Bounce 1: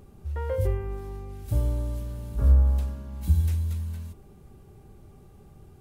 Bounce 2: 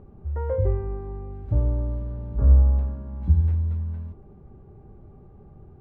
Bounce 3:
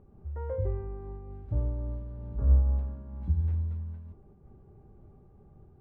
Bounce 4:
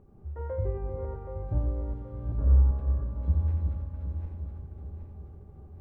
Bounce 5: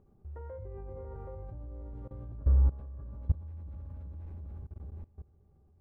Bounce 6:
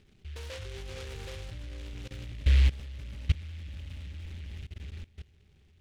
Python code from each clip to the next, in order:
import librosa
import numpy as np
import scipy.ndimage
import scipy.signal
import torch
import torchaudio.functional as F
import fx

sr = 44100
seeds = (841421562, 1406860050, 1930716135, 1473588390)

y1 = scipy.signal.sosfilt(scipy.signal.butter(2, 1100.0, 'lowpass', fs=sr, output='sos'), x)
y1 = F.gain(torch.from_numpy(y1), 3.0).numpy()
y2 = fx.am_noise(y1, sr, seeds[0], hz=5.7, depth_pct=50)
y2 = F.gain(torch.from_numpy(y2), -5.5).numpy()
y3 = fx.reverse_delay_fb(y2, sr, ms=387, feedback_pct=66, wet_db=-4.5)
y3 = y3 + 10.0 ** (-7.0 / 20.0) * np.pad(y3, (int(89 * sr / 1000.0), 0))[:len(y3)]
y4 = fx.level_steps(y3, sr, step_db=21)
y5 = fx.noise_mod_delay(y4, sr, seeds[1], noise_hz=2500.0, depth_ms=0.24)
y5 = F.gain(torch.from_numpy(y5), 2.0).numpy()